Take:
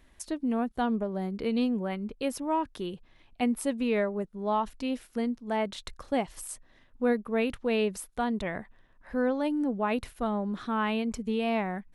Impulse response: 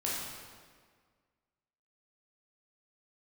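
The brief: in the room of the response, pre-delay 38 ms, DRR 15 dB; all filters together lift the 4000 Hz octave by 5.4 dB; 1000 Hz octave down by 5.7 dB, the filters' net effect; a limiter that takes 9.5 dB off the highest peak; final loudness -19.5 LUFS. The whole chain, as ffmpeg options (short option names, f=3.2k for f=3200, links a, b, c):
-filter_complex "[0:a]equalizer=f=1k:t=o:g=-8,equalizer=f=4k:t=o:g=8,alimiter=level_in=1.5dB:limit=-24dB:level=0:latency=1,volume=-1.5dB,asplit=2[a][b];[1:a]atrim=start_sample=2205,adelay=38[c];[b][c]afir=irnorm=-1:irlink=0,volume=-20.5dB[d];[a][d]amix=inputs=2:normalize=0,volume=15.5dB"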